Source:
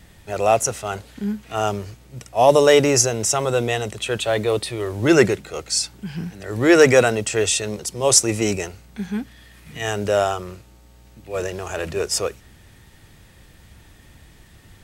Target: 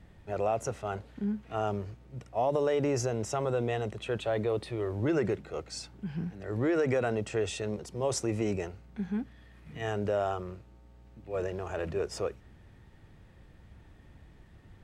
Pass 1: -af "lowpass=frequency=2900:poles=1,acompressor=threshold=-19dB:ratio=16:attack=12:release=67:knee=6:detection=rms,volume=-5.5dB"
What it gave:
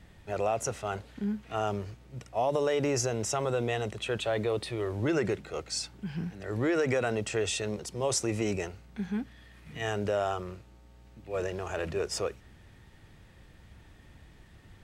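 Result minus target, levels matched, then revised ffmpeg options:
4,000 Hz band +5.5 dB
-af "lowpass=frequency=1100:poles=1,acompressor=threshold=-19dB:ratio=16:attack=12:release=67:knee=6:detection=rms,volume=-5.5dB"

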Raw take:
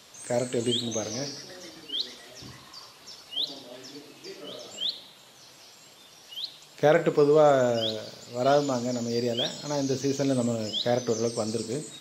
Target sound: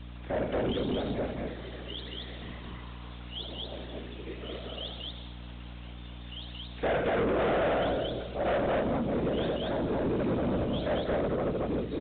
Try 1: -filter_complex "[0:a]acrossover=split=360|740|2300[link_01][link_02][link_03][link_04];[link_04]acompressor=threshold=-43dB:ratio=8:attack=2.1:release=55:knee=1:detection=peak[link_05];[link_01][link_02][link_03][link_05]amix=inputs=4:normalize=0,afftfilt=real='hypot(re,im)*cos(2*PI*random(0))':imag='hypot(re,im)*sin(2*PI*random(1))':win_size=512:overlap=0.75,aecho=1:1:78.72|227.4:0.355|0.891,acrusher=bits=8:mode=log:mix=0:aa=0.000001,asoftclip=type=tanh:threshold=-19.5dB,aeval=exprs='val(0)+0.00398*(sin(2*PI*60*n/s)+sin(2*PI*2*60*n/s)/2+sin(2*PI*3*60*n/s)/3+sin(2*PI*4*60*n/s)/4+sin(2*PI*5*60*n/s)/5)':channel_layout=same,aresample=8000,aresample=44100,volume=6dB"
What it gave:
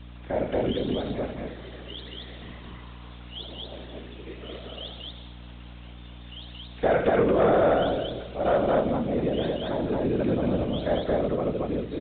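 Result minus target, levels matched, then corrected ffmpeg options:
soft clipping: distortion −10 dB
-filter_complex "[0:a]acrossover=split=360|740|2300[link_01][link_02][link_03][link_04];[link_04]acompressor=threshold=-43dB:ratio=8:attack=2.1:release=55:knee=1:detection=peak[link_05];[link_01][link_02][link_03][link_05]amix=inputs=4:normalize=0,afftfilt=real='hypot(re,im)*cos(2*PI*random(0))':imag='hypot(re,im)*sin(2*PI*random(1))':win_size=512:overlap=0.75,aecho=1:1:78.72|227.4:0.355|0.891,acrusher=bits=8:mode=log:mix=0:aa=0.000001,asoftclip=type=tanh:threshold=-31dB,aeval=exprs='val(0)+0.00398*(sin(2*PI*60*n/s)+sin(2*PI*2*60*n/s)/2+sin(2*PI*3*60*n/s)/3+sin(2*PI*4*60*n/s)/4+sin(2*PI*5*60*n/s)/5)':channel_layout=same,aresample=8000,aresample=44100,volume=6dB"

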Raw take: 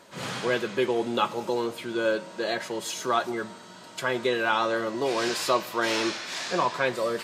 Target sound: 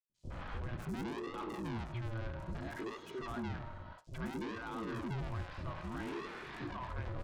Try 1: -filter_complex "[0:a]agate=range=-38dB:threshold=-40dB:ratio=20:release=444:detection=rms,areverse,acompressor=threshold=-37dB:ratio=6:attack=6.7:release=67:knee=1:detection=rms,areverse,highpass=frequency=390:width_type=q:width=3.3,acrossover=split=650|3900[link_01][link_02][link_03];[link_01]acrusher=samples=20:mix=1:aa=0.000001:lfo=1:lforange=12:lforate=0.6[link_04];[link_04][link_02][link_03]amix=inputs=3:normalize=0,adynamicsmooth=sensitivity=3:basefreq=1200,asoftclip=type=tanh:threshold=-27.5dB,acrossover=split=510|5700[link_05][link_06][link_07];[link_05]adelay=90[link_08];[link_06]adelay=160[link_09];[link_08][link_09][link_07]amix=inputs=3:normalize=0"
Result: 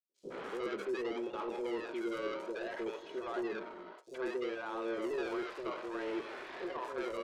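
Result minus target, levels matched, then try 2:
sample-and-hold swept by an LFO: distortion −23 dB; soft clipping: distortion −8 dB
-filter_complex "[0:a]agate=range=-38dB:threshold=-40dB:ratio=20:release=444:detection=rms,areverse,acompressor=threshold=-37dB:ratio=6:attack=6.7:release=67:knee=1:detection=rms,areverse,highpass=frequency=390:width_type=q:width=3.3,acrossover=split=650|3900[link_01][link_02][link_03];[link_01]acrusher=samples=76:mix=1:aa=0.000001:lfo=1:lforange=45.6:lforate=0.6[link_04];[link_04][link_02][link_03]amix=inputs=3:normalize=0,adynamicsmooth=sensitivity=3:basefreq=1200,asoftclip=type=tanh:threshold=-35.5dB,acrossover=split=510|5700[link_05][link_06][link_07];[link_05]adelay=90[link_08];[link_06]adelay=160[link_09];[link_08][link_09][link_07]amix=inputs=3:normalize=0"

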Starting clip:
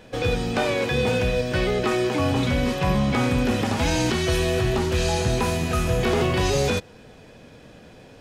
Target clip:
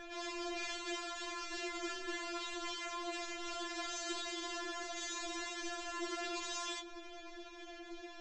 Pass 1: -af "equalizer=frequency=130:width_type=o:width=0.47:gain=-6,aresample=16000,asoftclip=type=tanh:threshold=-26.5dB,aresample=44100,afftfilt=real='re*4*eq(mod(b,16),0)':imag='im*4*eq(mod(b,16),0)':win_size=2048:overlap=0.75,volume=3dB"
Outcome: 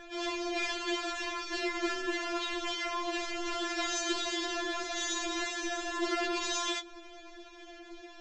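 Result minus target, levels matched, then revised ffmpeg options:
soft clipping: distortion −5 dB
-af "equalizer=frequency=130:width_type=o:width=0.47:gain=-6,aresample=16000,asoftclip=type=tanh:threshold=-38dB,aresample=44100,afftfilt=real='re*4*eq(mod(b,16),0)':imag='im*4*eq(mod(b,16),0)':win_size=2048:overlap=0.75,volume=3dB"

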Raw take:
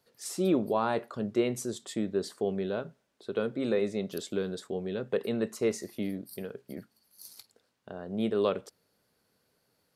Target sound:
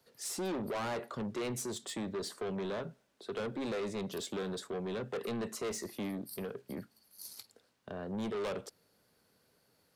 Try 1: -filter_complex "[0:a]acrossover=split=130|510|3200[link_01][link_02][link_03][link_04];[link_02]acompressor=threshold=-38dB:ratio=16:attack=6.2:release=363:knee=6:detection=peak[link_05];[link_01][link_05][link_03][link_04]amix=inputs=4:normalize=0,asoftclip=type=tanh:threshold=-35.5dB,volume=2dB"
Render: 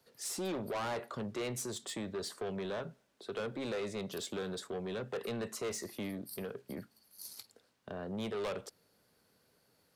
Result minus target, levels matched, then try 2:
downward compressor: peak gain reduction +8.5 dB
-filter_complex "[0:a]acrossover=split=130|510|3200[link_01][link_02][link_03][link_04];[link_02]acompressor=threshold=-29dB:ratio=16:attack=6.2:release=363:knee=6:detection=peak[link_05];[link_01][link_05][link_03][link_04]amix=inputs=4:normalize=0,asoftclip=type=tanh:threshold=-35.5dB,volume=2dB"

